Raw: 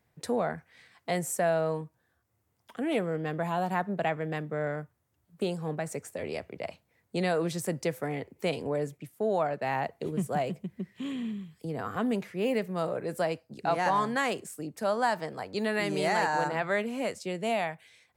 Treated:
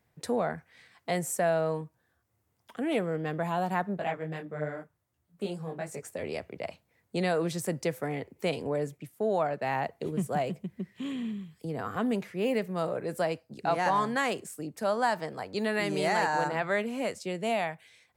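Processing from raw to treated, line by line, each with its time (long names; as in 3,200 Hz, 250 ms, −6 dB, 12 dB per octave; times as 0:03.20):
0:03.97–0:06.03: micro pitch shift up and down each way 35 cents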